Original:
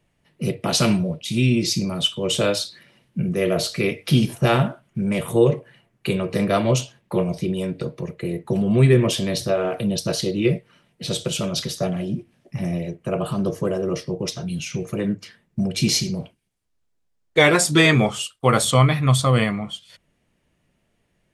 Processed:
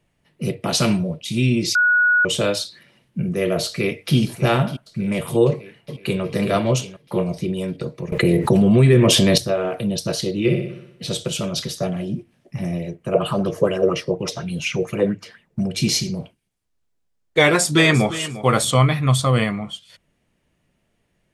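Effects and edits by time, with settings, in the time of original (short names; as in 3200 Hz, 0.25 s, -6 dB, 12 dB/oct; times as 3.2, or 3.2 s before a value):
1.75–2.25 bleep 1460 Hz -12.5 dBFS
3.66–4.16 echo throw 0.6 s, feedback 65%, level -13 dB
5.51–6.22 echo throw 0.37 s, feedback 35%, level -6.5 dB
8.12–9.38 fast leveller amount 70%
10.41–11.04 flutter echo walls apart 10.5 m, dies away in 0.74 s
13.14–15.63 LFO bell 4.2 Hz 470–2900 Hz +15 dB
17.43–18.13 echo throw 0.35 s, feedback 20%, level -14.5 dB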